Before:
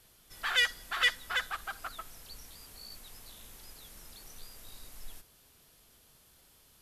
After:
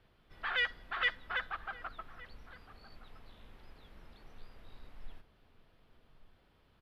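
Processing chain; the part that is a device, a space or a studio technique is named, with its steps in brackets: shout across a valley (air absorption 410 m; outdoor echo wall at 200 m, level -16 dB)

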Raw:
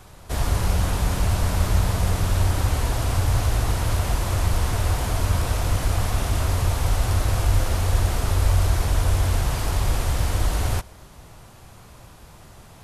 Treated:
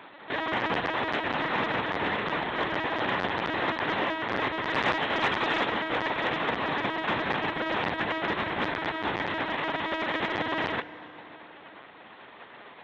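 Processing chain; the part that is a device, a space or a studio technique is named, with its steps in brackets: 4.68–5.66 high shelf 2300 Hz +5.5 dB; talking toy (LPC vocoder at 8 kHz pitch kept; HPF 380 Hz 12 dB/oct; bell 1900 Hz +7.5 dB 0.32 oct; soft clip -17 dBFS, distortion -21 dB); FDN reverb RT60 3.7 s, high-frequency decay 0.5×, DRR 15.5 dB; gain +2 dB

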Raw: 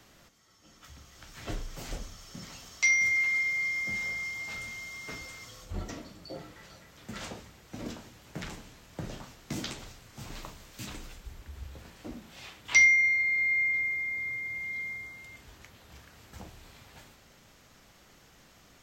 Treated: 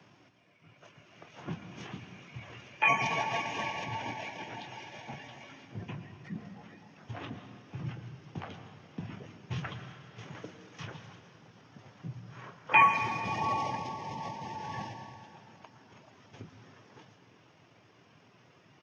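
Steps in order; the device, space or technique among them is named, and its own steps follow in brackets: steep high-pass 200 Hz 72 dB/oct; reverb removal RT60 0.97 s; monster voice (pitch shift -11 st; formant shift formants -4 st; low shelf 240 Hz +5 dB; reverb RT60 2.2 s, pre-delay 0.102 s, DRR 7 dB)

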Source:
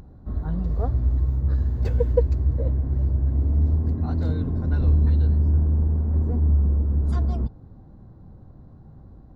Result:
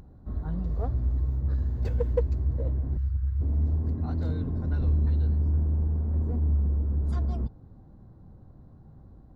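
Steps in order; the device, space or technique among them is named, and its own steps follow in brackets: 2.97–3.41 elliptic band-stop 110–1300 Hz; parallel distortion (in parallel at -7.5 dB: hard clip -20 dBFS, distortion -11 dB); on the sum: gain -7.5 dB

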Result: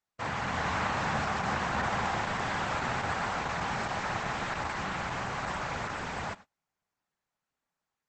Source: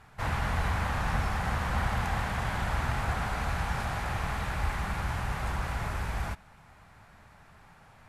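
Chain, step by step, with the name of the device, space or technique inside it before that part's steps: video call (HPF 170 Hz 12 dB/oct; AGC gain up to 3.5 dB; gate -45 dBFS, range -36 dB; Opus 12 kbps 48000 Hz)

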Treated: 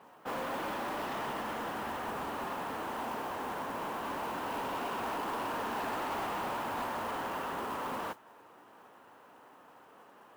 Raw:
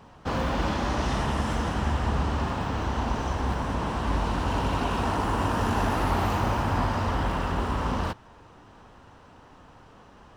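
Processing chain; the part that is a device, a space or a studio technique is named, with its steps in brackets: carbon microphone (BPF 340–2800 Hz; soft clip -28.5 dBFS, distortion -12 dB; modulation noise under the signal 18 dB); gain -3 dB

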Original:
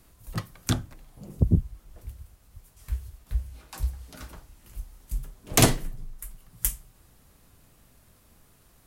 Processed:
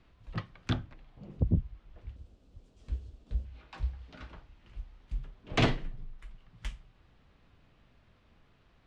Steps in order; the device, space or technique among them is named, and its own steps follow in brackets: overdriven synthesiser ladder filter (soft clip -10.5 dBFS, distortion -16 dB; ladder low-pass 4100 Hz, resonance 25%); 2.16–3.45 ten-band EQ 125 Hz -3 dB, 250 Hz +10 dB, 500 Hz +6 dB, 1000 Hz -5 dB, 2000 Hz -9 dB, 8000 Hz +9 dB; gain +1.5 dB

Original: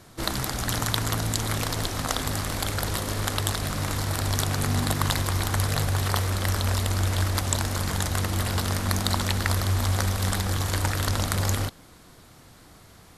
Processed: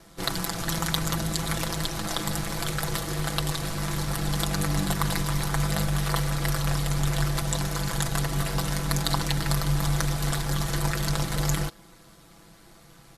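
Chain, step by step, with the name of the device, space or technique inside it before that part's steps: ring-modulated robot voice (ring modulator 50 Hz; comb 6 ms)

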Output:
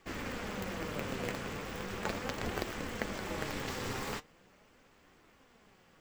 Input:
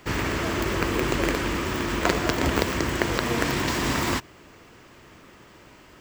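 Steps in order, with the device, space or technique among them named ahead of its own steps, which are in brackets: alien voice (ring modulator 150 Hz; flange 0.39 Hz, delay 2.5 ms, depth 5.7 ms, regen +68%); gain -6 dB

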